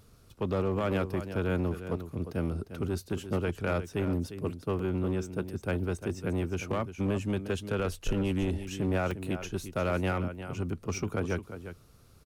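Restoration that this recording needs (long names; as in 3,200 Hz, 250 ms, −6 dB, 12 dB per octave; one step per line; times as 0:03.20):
clipped peaks rebuilt −22.5 dBFS
repair the gap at 0:04.79/0:09.11, 3.2 ms
echo removal 352 ms −11.5 dB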